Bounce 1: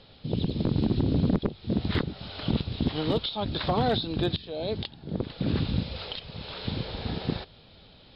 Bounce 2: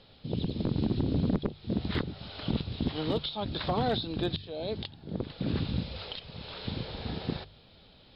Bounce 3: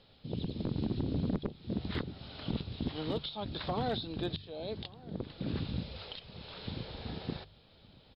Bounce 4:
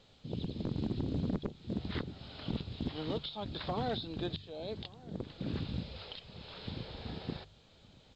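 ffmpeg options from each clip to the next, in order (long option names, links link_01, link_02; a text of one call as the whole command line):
ffmpeg -i in.wav -af "bandreject=frequency=49.2:width_type=h:width=4,bandreject=frequency=98.4:width_type=h:width=4,bandreject=frequency=147.6:width_type=h:width=4,volume=-3.5dB" out.wav
ffmpeg -i in.wav -filter_complex "[0:a]asplit=2[link_01][link_02];[link_02]adelay=1166,volume=-21dB,highshelf=frequency=4000:gain=-26.2[link_03];[link_01][link_03]amix=inputs=2:normalize=0,volume=-5dB" out.wav
ffmpeg -i in.wav -af "volume=-1.5dB" -ar 16000 -c:a pcm_alaw out.wav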